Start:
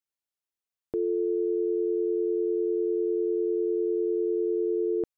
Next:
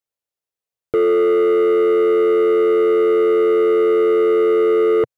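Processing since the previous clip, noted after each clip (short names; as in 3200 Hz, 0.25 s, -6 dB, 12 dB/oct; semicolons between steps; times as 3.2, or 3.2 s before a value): ten-band EQ 125 Hz +7 dB, 250 Hz -6 dB, 500 Hz +9 dB; sample leveller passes 2; gain +5 dB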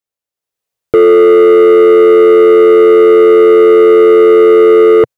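AGC gain up to 11.5 dB; gain +1 dB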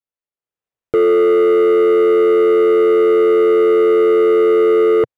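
median filter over 9 samples; gain -7 dB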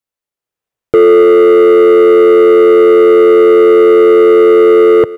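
echo 0.285 s -18.5 dB; gain +7 dB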